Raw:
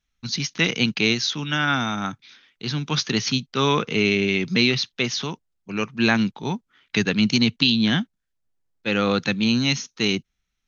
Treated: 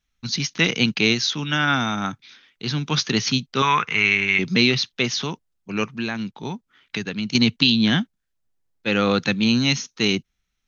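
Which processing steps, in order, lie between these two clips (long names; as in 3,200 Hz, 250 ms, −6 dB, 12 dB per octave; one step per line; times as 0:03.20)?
0:03.62–0:04.39: octave-band graphic EQ 125/250/500/1,000/2,000/4,000 Hz −4/−10/−12/+6/+9/−8 dB
0:05.97–0:07.35: downward compressor 2.5 to 1, threshold −30 dBFS, peak gain reduction 11 dB
level +1.5 dB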